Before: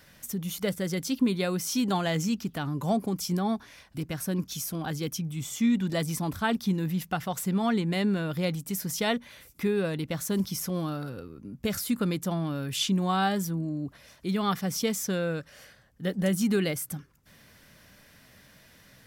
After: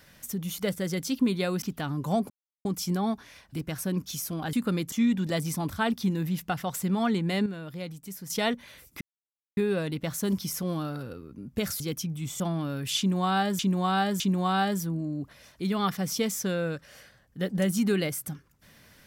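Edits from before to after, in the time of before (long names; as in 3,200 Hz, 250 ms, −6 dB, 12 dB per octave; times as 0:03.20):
0:01.62–0:02.39: remove
0:03.07: splice in silence 0.35 s
0:04.95–0:05.55: swap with 0:11.87–0:12.26
0:08.09–0:08.93: clip gain −8.5 dB
0:09.64: splice in silence 0.56 s
0:12.84–0:13.45: repeat, 3 plays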